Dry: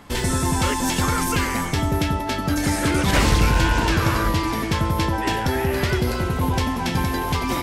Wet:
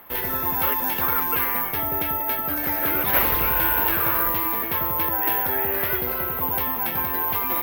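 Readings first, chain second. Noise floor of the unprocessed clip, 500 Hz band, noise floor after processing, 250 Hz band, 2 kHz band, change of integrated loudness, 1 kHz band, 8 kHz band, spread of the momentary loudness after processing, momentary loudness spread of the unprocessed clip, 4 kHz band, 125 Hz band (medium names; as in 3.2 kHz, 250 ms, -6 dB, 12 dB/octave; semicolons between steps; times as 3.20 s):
-26 dBFS, -4.5 dB, -28 dBFS, -10.5 dB, -2.5 dB, +1.0 dB, -2.0 dB, -11.0 dB, 5 LU, 5 LU, -9.0 dB, -15.0 dB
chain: three-band isolator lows -14 dB, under 400 Hz, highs -17 dB, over 3 kHz; careless resampling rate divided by 3×, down filtered, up zero stuff; trim -1.5 dB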